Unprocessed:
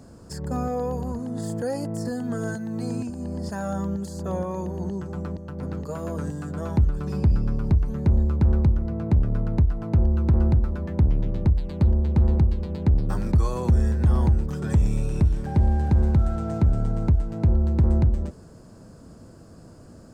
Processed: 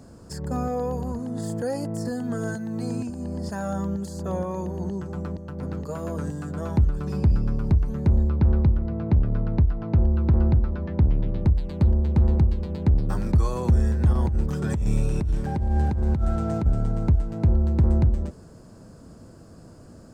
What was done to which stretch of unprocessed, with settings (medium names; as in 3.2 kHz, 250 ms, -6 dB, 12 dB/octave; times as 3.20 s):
8.29–11.42 s: low-pass 4.9 kHz 24 dB/octave
14.13–16.66 s: compressor with a negative ratio -21 dBFS